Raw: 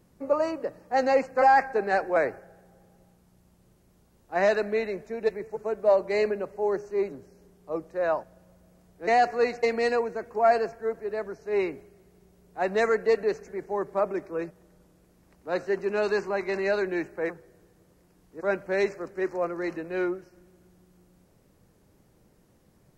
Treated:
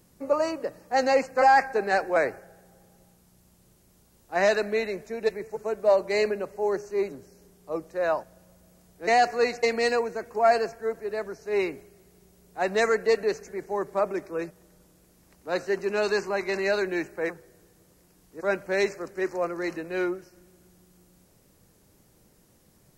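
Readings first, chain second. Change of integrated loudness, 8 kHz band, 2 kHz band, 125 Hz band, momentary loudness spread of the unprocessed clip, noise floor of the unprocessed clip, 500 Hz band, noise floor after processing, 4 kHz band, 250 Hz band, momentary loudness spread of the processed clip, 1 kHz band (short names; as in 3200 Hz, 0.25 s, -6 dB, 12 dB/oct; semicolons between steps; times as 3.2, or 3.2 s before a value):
+0.5 dB, n/a, +2.5 dB, 0.0 dB, 11 LU, -63 dBFS, 0.0 dB, -61 dBFS, +6.0 dB, 0.0 dB, 11 LU, +0.5 dB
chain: high shelf 3300 Hz +10 dB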